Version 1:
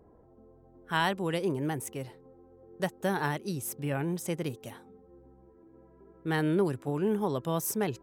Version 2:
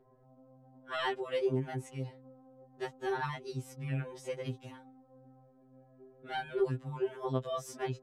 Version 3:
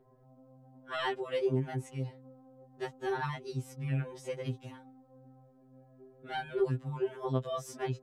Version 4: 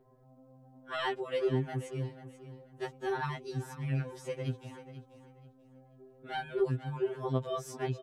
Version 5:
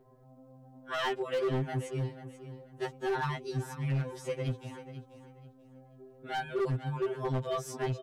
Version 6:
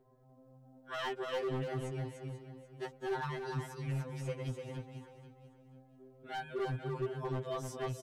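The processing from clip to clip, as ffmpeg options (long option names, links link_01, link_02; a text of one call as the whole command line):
ffmpeg -i in.wav -af "lowpass=5400,afftfilt=real='re*2.45*eq(mod(b,6),0)':imag='im*2.45*eq(mod(b,6),0)':win_size=2048:overlap=0.75,volume=-2dB" out.wav
ffmpeg -i in.wav -af "equalizer=frequency=130:width=0.72:gain=3" out.wav
ffmpeg -i in.wav -af "aecho=1:1:487|974|1461:0.211|0.0571|0.0154" out.wav
ffmpeg -i in.wav -af "asoftclip=type=hard:threshold=-29.5dB,volume=3dB" out.wav
ffmpeg -i in.wav -af "aecho=1:1:294:0.562,volume=-6dB" out.wav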